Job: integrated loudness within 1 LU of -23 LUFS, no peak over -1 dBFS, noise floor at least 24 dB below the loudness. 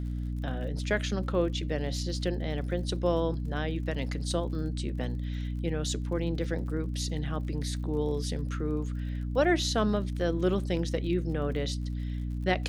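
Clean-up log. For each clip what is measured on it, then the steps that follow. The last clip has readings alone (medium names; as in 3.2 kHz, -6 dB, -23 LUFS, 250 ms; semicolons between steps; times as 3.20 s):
tick rate 44 per s; hum 60 Hz; highest harmonic 300 Hz; hum level -30 dBFS; loudness -31.0 LUFS; peak level -10.5 dBFS; loudness target -23.0 LUFS
-> de-click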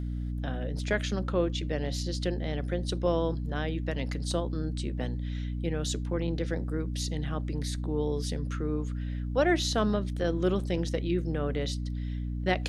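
tick rate 0.16 per s; hum 60 Hz; highest harmonic 300 Hz; hum level -30 dBFS
-> hum notches 60/120/180/240/300 Hz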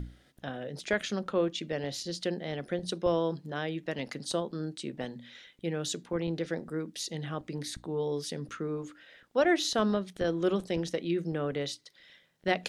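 hum not found; loudness -33.0 LUFS; peak level -12.0 dBFS; loudness target -23.0 LUFS
-> trim +10 dB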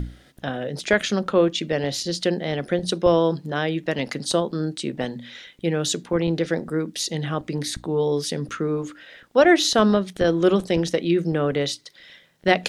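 loudness -23.0 LUFS; peak level -2.0 dBFS; noise floor -54 dBFS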